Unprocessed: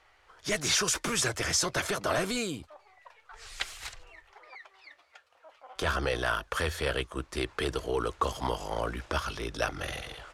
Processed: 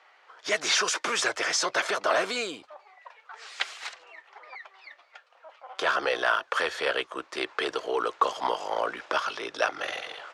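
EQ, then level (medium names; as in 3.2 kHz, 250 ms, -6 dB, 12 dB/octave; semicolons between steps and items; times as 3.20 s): band-pass 470–5600 Hz; tilt EQ +1.5 dB/octave; treble shelf 2.1 kHz -8.5 dB; +7.5 dB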